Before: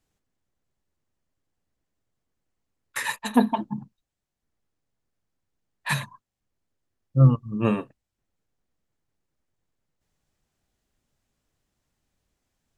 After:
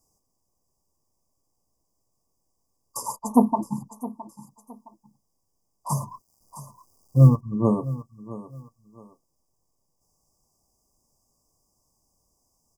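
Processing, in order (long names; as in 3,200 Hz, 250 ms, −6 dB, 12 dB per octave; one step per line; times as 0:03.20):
0:05.90–0:07.41: mu-law and A-law mismatch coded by mu
linear-phase brick-wall band-stop 1,200–4,700 Hz
on a send: repeating echo 665 ms, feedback 23%, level −16.5 dB
on the sum: one half of a high-frequency compander encoder only
level +2 dB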